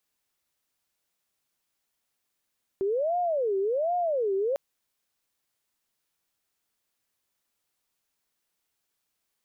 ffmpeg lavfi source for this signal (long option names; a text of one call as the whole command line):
ffmpeg -f lavfi -i "aevalsrc='0.0668*sin(2*PI*(549.5*t-164.5/(2*PI*1.3)*sin(2*PI*1.3*t)))':duration=1.75:sample_rate=44100" out.wav